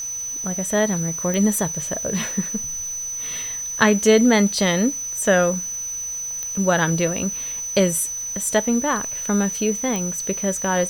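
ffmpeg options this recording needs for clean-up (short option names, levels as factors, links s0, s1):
-af "adeclick=t=4,bandreject=f=6000:w=30,afwtdn=0.005"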